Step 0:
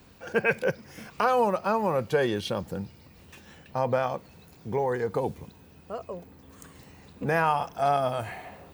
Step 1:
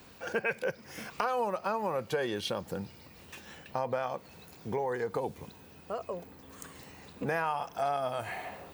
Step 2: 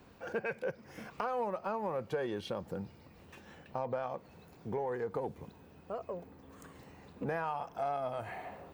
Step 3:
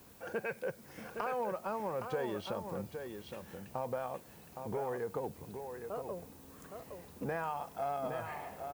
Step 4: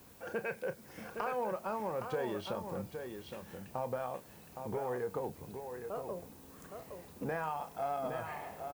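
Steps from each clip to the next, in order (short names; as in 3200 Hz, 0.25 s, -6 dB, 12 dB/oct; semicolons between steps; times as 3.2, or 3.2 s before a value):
low shelf 250 Hz -8 dB; compressor 2.5:1, threshold -35 dBFS, peak gain reduction 10.5 dB; gain +3 dB
high shelf 2200 Hz -12 dB; in parallel at -10 dB: soft clip -33.5 dBFS, distortion -9 dB; on the sum: gain -4 dB
added noise blue -60 dBFS; echo 0.815 s -7 dB; gain -1.5 dB
doubler 32 ms -11.5 dB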